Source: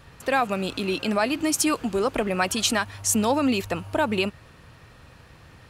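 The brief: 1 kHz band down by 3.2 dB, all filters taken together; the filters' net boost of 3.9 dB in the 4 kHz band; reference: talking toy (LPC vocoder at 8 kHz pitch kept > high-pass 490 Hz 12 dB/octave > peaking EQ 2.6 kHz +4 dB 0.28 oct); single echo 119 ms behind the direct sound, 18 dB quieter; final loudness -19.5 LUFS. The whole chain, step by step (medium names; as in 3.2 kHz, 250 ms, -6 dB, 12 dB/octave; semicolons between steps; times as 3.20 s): peaking EQ 1 kHz -4 dB; peaking EQ 4 kHz +4.5 dB; delay 119 ms -18 dB; LPC vocoder at 8 kHz pitch kept; high-pass 490 Hz 12 dB/octave; peaking EQ 2.6 kHz +4 dB 0.28 oct; trim +8.5 dB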